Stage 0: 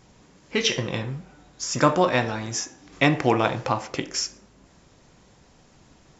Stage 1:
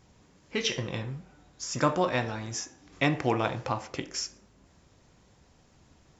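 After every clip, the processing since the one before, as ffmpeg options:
-af "equalizer=f=79:w=1.8:g=6.5,volume=0.473"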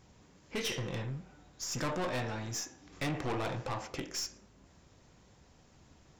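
-af "aeval=exprs='(tanh(35.5*val(0)+0.3)-tanh(0.3))/35.5':c=same"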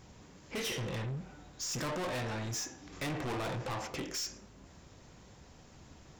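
-af "asoftclip=type=tanh:threshold=0.0106,volume=1.88"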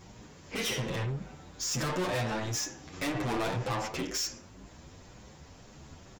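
-filter_complex "[0:a]asplit=2[s0][s1];[s1]adelay=8.5,afreqshift=2[s2];[s0][s2]amix=inputs=2:normalize=1,volume=2.37"

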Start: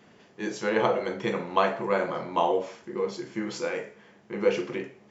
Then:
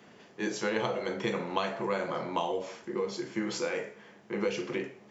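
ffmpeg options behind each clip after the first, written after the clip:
-filter_complex "[0:a]lowshelf=f=110:g=-6.5,acrossover=split=170|3000[s0][s1][s2];[s1]acompressor=threshold=0.0316:ratio=6[s3];[s0][s3][s2]amix=inputs=3:normalize=0,volume=1.19"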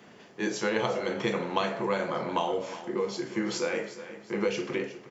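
-af "aecho=1:1:362|724|1086:0.2|0.0718|0.0259,volume=1.33"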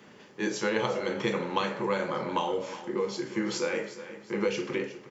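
-af "asuperstop=centerf=690:order=4:qfactor=7.7"

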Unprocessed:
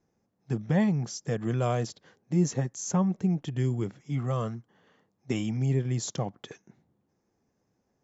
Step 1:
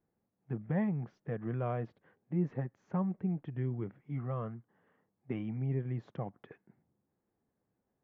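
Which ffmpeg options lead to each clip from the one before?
-af "lowpass=f=2200:w=0.5412,lowpass=f=2200:w=1.3066,volume=0.422"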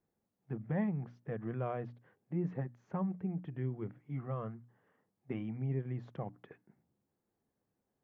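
-af "bandreject=f=60:t=h:w=6,bandreject=f=120:t=h:w=6,bandreject=f=180:t=h:w=6,bandreject=f=240:t=h:w=6,bandreject=f=300:t=h:w=6,volume=0.841"

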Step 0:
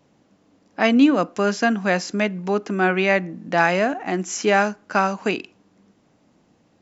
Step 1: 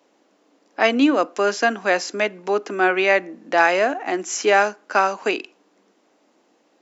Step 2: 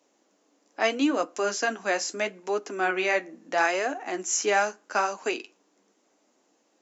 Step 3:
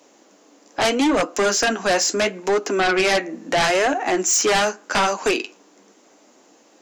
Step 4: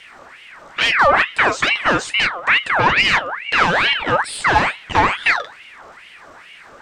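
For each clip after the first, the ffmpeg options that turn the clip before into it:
-af "highpass=f=300:w=0.5412,highpass=f=300:w=1.3066,volume=1.26"
-af "equalizer=f=6800:t=o:w=0.72:g=9.5,flanger=delay=6.2:depth=8.2:regen=-48:speed=0.77:shape=triangular,volume=0.668"
-filter_complex "[0:a]asplit=2[s0][s1];[s1]acompressor=threshold=0.0282:ratio=6,volume=0.944[s2];[s0][s2]amix=inputs=2:normalize=0,aeval=exprs='0.398*sin(PI/2*3.55*val(0)/0.398)':c=same,volume=0.501"
-af "aeval=exprs='val(0)+0.5*0.00891*sgn(val(0))':c=same,aemphasis=mode=reproduction:type=riaa,aeval=exprs='val(0)*sin(2*PI*1700*n/s+1700*0.5/2.3*sin(2*PI*2.3*n/s))':c=same,volume=1.33"

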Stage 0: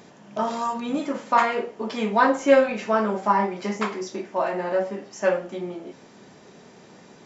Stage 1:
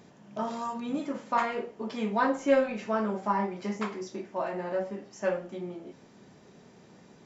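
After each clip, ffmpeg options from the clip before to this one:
-af "lowshelf=f=210:g=8.5,volume=0.376"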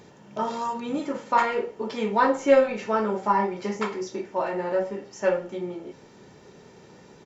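-af "aecho=1:1:2.2:0.36,volume=1.78"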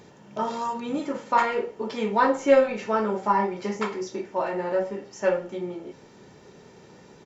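-af anull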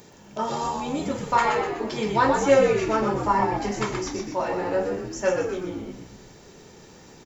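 -filter_complex "[0:a]aemphasis=mode=production:type=50fm,asplit=7[s0][s1][s2][s3][s4][s5][s6];[s1]adelay=124,afreqshift=-78,volume=0.562[s7];[s2]adelay=248,afreqshift=-156,volume=0.282[s8];[s3]adelay=372,afreqshift=-234,volume=0.141[s9];[s4]adelay=496,afreqshift=-312,volume=0.07[s10];[s5]adelay=620,afreqshift=-390,volume=0.0351[s11];[s6]adelay=744,afreqshift=-468,volume=0.0176[s12];[s0][s7][s8][s9][s10][s11][s12]amix=inputs=7:normalize=0"

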